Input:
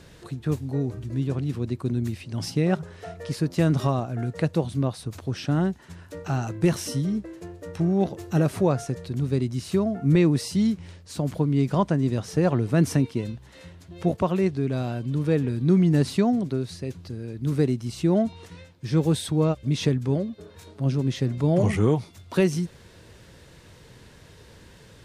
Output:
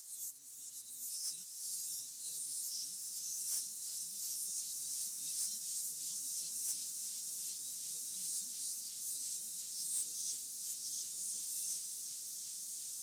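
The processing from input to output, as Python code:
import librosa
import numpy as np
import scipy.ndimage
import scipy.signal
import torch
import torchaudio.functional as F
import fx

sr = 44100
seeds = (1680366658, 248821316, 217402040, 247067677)

p1 = fx.spec_swells(x, sr, rise_s=0.82)
p2 = scipy.signal.sosfilt(scipy.signal.cheby2(4, 60, 2100.0, 'highpass', fs=sr, output='sos'), p1)
p3 = p2 + 0.45 * np.pad(p2, (int(4.1 * sr / 1000.0), 0))[:len(p2)]
p4 = fx.over_compress(p3, sr, threshold_db=-51.0, ratio=-0.5)
p5 = p3 + F.gain(torch.from_numpy(p4), 1.0).numpy()
p6 = fx.leveller(p5, sr, passes=2)
p7 = fx.stretch_vocoder_free(p6, sr, factor=0.52)
p8 = fx.echo_diffused(p7, sr, ms=1616, feedback_pct=65, wet_db=-4)
p9 = fx.echo_warbled(p8, sr, ms=356, feedback_pct=71, rate_hz=2.8, cents=153, wet_db=-10.5)
y = F.gain(torch.from_numpy(p9), -4.5).numpy()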